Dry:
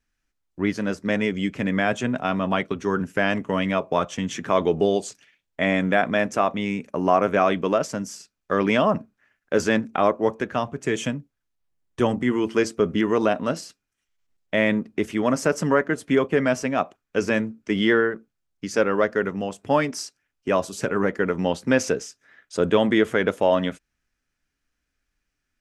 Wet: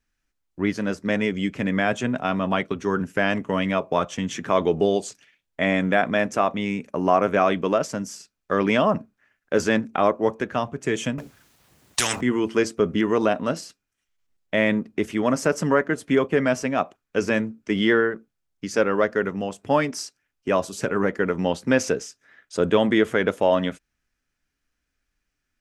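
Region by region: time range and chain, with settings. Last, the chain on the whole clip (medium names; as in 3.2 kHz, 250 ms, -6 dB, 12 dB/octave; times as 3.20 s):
11.18–12.21 s: high-pass 82 Hz + spectrum-flattening compressor 10:1
whole clip: none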